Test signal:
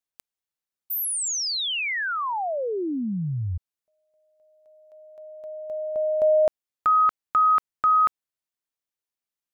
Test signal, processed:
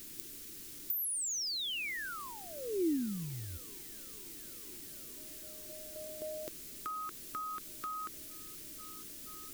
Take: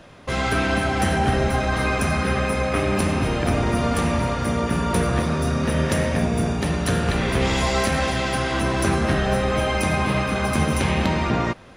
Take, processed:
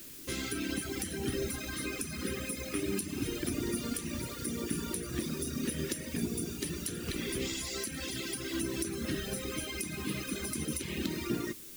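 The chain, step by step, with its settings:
on a send: delay with a band-pass on its return 479 ms, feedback 82%, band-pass 820 Hz, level −21 dB
on the sum: reverb reduction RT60 1.8 s
background noise pink −46 dBFS
first-order pre-emphasis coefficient 0.97
downward compressor 12 to 1, threshold −36 dBFS
low shelf with overshoot 500 Hz +14 dB, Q 3
level +1.5 dB

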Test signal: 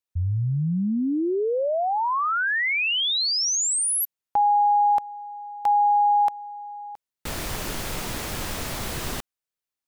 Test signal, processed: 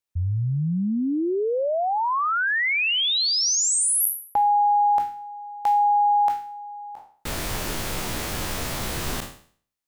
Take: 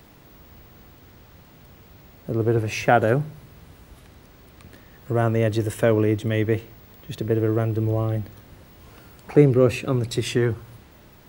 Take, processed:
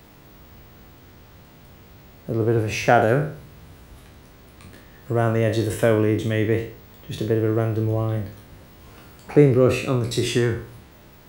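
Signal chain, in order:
peak hold with a decay on every bin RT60 0.49 s

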